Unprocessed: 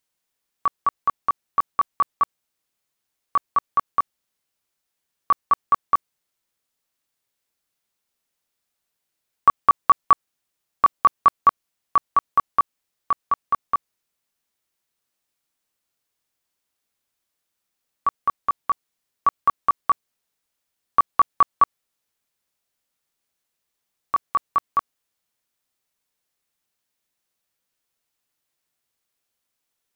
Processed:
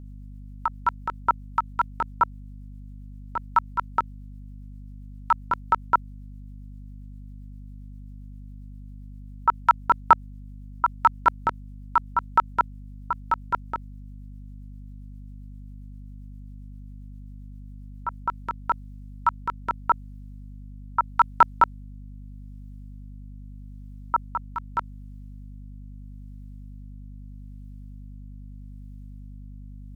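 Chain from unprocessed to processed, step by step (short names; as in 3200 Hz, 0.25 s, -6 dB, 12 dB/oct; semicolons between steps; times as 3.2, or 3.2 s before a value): rotary speaker horn 7.5 Hz, later 0.8 Hz, at 17.8; ring modulator 190 Hz; hum 50 Hz, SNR 11 dB; gain +4 dB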